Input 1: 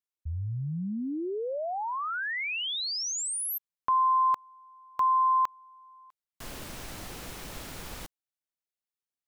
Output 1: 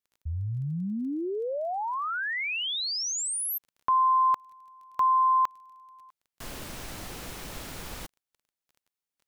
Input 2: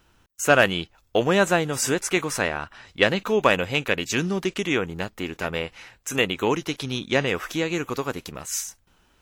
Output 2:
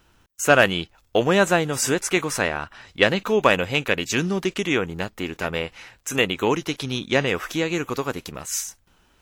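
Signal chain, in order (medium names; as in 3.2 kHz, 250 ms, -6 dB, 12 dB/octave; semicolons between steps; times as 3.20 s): crackle 17 per s -49 dBFS; trim +1.5 dB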